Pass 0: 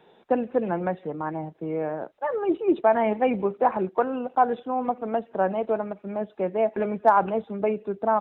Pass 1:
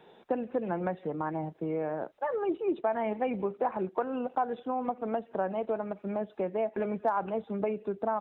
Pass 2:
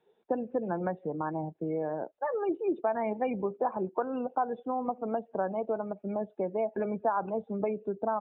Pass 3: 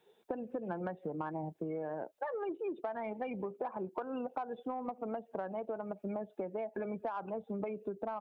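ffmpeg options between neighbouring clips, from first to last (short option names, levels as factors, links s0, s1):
-af "acompressor=threshold=0.0316:ratio=2.5"
-af "afftdn=nr=18:nf=-41"
-filter_complex "[0:a]asplit=2[s0][s1];[s1]asoftclip=type=tanh:threshold=0.0631,volume=0.447[s2];[s0][s2]amix=inputs=2:normalize=0,highshelf=f=2400:g=10.5,acompressor=threshold=0.0224:ratio=6,volume=0.75"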